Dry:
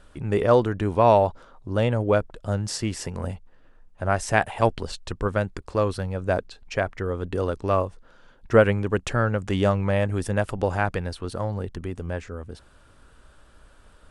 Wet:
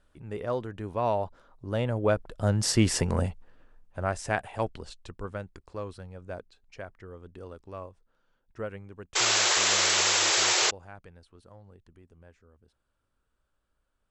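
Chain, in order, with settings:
source passing by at 0:02.93, 7 m/s, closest 2 metres
sound drawn into the spectrogram noise, 0:09.15–0:10.71, 320–7,800 Hz −30 dBFS
level +6 dB

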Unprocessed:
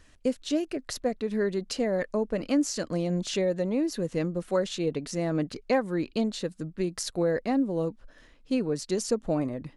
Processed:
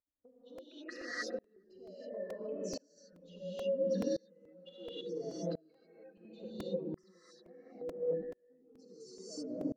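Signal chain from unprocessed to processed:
expanding power law on the bin magnitudes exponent 2.6
downward compressor 3 to 1, threshold −43 dBFS, peak gain reduction 16 dB
auto-filter band-pass saw up 0.64 Hz 550–2,800 Hz
feedback echo with a band-pass in the loop 414 ms, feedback 61%, band-pass 350 Hz, level −11 dB
reverb whose tail is shaped and stops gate 340 ms rising, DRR −7 dB
dynamic equaliser 620 Hz, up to −5 dB, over −54 dBFS, Q 0.76
0:02.97–0:05.01: comb filter 3.9 ms, depth 93%
regular buffer underruns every 0.43 s, samples 128, repeat, from 0:00.58
tremolo with a ramp in dB swelling 0.72 Hz, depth 32 dB
level +16.5 dB

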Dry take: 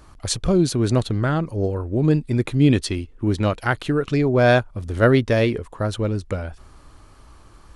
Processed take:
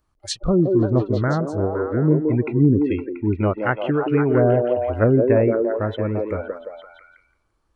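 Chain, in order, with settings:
treble cut that deepens with the level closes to 570 Hz, closed at −11.5 dBFS
noise reduction from a noise print of the clip's start 23 dB
echo through a band-pass that steps 171 ms, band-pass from 420 Hz, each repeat 0.7 octaves, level 0 dB

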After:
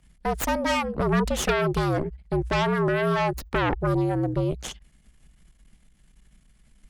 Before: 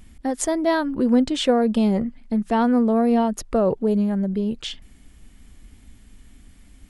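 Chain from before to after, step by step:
harmonic generator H 8 −6 dB, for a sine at −7 dBFS
frequency shifter −65 Hz
level −8.5 dB

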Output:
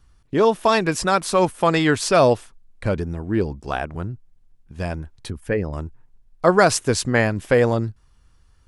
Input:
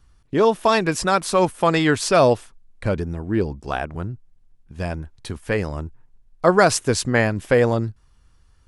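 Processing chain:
0:05.30–0:05.73: spectral envelope exaggerated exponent 1.5

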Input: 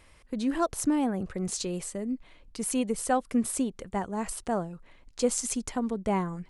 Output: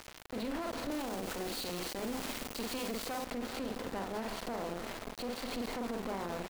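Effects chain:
compressor on every frequency bin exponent 0.6
linear-phase brick-wall low-pass 4,800 Hz
double-tracking delay 46 ms −5 dB
downward compressor 6 to 1, threshold −25 dBFS, peak gain reduction 8 dB
comb and all-pass reverb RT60 4 s, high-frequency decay 0.3×, pre-delay 90 ms, DRR 12 dB
asymmetric clip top −35 dBFS
parametric band 160 Hz −9 dB 0.48 octaves
hum removal 51.22 Hz, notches 7
centre clipping without the shift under −36.5 dBFS
0:00.91–0:03.25: high-shelf EQ 3,700 Hz +9.5 dB
brickwall limiter −29 dBFS, peak gain reduction 10.5 dB

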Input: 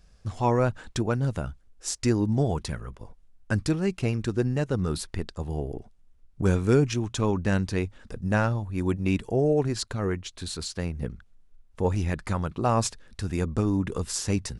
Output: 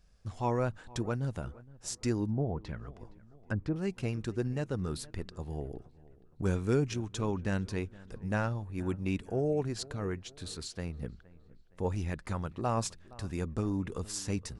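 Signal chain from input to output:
delay with a low-pass on its return 467 ms, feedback 44%, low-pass 2,300 Hz, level −21 dB
0:02.29–0:03.76: treble cut that deepens with the level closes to 900 Hz, closed at −21 dBFS
level −7.5 dB

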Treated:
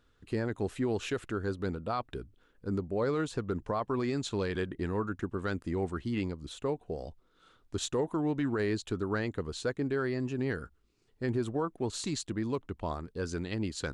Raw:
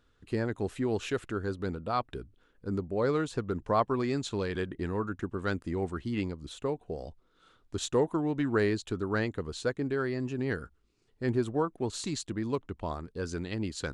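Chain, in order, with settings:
brickwall limiter −22 dBFS, peak gain reduction 8.5 dB

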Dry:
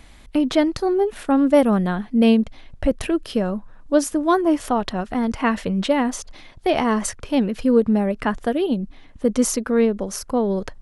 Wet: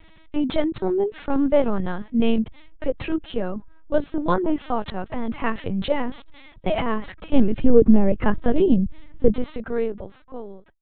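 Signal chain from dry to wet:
fade-out on the ending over 1.51 s
linear-prediction vocoder at 8 kHz pitch kept
0:07.33–0:09.34: low-shelf EQ 450 Hz +10.5 dB
level −2.5 dB

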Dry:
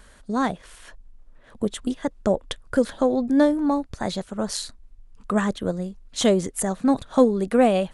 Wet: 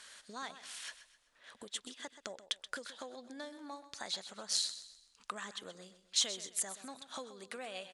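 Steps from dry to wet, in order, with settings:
downward compressor 5 to 1, threshold −33 dBFS, peak gain reduction 19.5 dB
resonant band-pass 4,700 Hz, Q 0.84
on a send: repeating echo 128 ms, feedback 38%, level −13 dB
on the sum: level +6 dB

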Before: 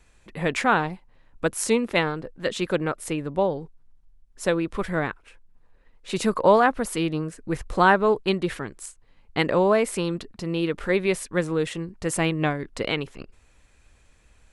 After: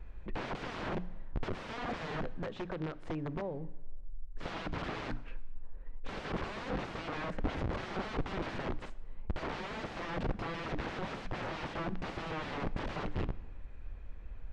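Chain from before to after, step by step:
low-shelf EQ 70 Hz +11 dB
mains-hum notches 60/120/180/240/300 Hz
brickwall limiter −16 dBFS, peak gain reduction 11 dB
0:02.21–0:04.43: downward compressor 16 to 1, threshold −37 dBFS, peak gain reduction 17.5 dB
wrap-around overflow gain 32.5 dB
head-to-tape spacing loss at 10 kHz 42 dB
dense smooth reverb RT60 1.2 s, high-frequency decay 0.9×, DRR 16.5 dB
level +5.5 dB

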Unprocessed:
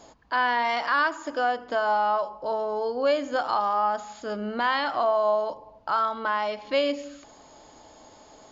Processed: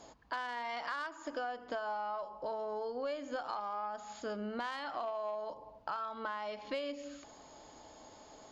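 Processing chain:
harmonic generator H 3 −19 dB, 4 −36 dB, 5 −34 dB, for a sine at −12 dBFS
downward compressor, threshold −34 dBFS, peak gain reduction 14 dB
level −2 dB

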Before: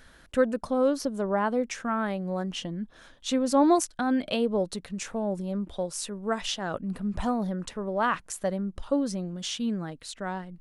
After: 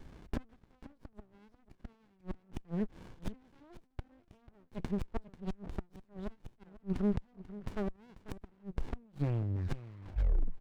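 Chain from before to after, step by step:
turntable brake at the end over 1.92 s
parametric band 2,100 Hz +6.5 dB 0.73 octaves
notch filter 6,800 Hz, Q 9.9
gate with flip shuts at −22 dBFS, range −36 dB
in parallel at −9.5 dB: gain into a clipping stage and back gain 30.5 dB
on the sum: high-frequency loss of the air 89 metres
single-tap delay 491 ms −16 dB
windowed peak hold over 65 samples
level +1 dB

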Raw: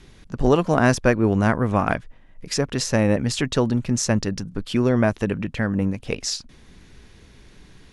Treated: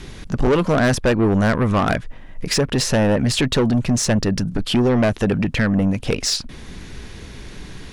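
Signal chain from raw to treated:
dynamic equaliser 6,400 Hz, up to −6 dB, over −43 dBFS, Q 1.4
in parallel at +2 dB: downward compressor, threshold −28 dBFS, peak gain reduction 15.5 dB
on the sum: soft clipping −17.5 dBFS, distortion −8 dB
level +5.5 dB

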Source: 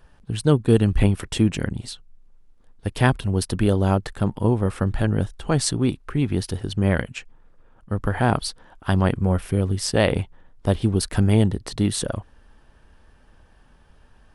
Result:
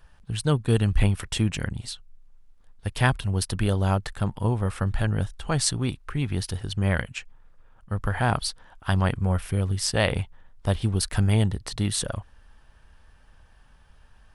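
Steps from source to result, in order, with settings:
parametric band 320 Hz −9 dB 1.9 octaves

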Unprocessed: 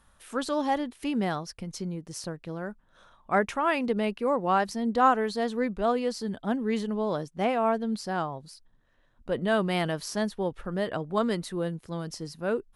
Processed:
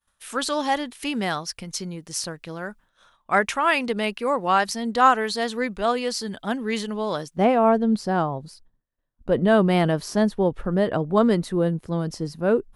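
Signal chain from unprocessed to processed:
downward expander −50 dBFS
tilt shelving filter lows −5.5 dB, about 1,100 Hz, from 0:07.36 lows +4 dB
level +5.5 dB

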